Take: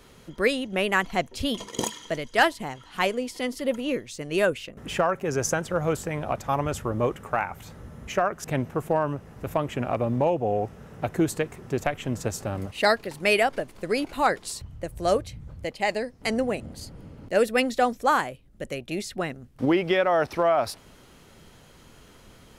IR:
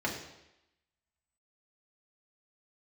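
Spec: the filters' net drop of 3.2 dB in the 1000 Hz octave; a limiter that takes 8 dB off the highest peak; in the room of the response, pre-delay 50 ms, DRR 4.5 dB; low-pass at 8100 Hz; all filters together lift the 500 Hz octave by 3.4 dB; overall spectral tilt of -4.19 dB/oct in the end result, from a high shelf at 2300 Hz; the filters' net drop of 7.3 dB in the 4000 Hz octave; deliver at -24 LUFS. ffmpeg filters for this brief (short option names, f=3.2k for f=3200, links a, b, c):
-filter_complex "[0:a]lowpass=8.1k,equalizer=f=500:t=o:g=6.5,equalizer=f=1k:t=o:g=-7,highshelf=f=2.3k:g=-5.5,equalizer=f=4k:t=o:g=-4.5,alimiter=limit=-15dB:level=0:latency=1,asplit=2[a][b];[1:a]atrim=start_sample=2205,adelay=50[c];[b][c]afir=irnorm=-1:irlink=0,volume=-12dB[d];[a][d]amix=inputs=2:normalize=0,volume=1.5dB"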